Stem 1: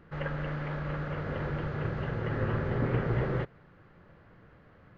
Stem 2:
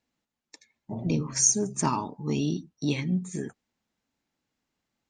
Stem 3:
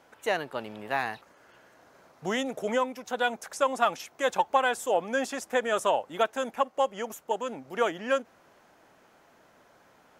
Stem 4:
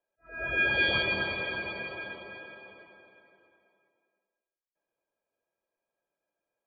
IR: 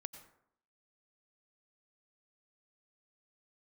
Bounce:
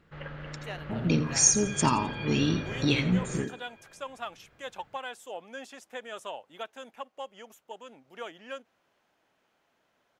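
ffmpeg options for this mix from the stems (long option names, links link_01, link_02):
-filter_complex "[0:a]volume=-7.5dB[link_01];[1:a]bandreject=frequency=6100:width=12,volume=1dB,asplit=3[link_02][link_03][link_04];[link_03]volume=-14.5dB[link_05];[2:a]adelay=400,volume=-14.5dB[link_06];[3:a]acompressor=threshold=-30dB:ratio=6,adelay=900,volume=-7dB[link_07];[link_04]apad=whole_len=333740[link_08];[link_07][link_08]sidechaincompress=threshold=-27dB:ratio=8:attack=16:release=562[link_09];[link_05]aecho=0:1:86|172|258|344|430:1|0.33|0.109|0.0359|0.0119[link_10];[link_01][link_02][link_06][link_09][link_10]amix=inputs=5:normalize=0,equalizer=frequency=3100:width_type=o:width=1.2:gain=7"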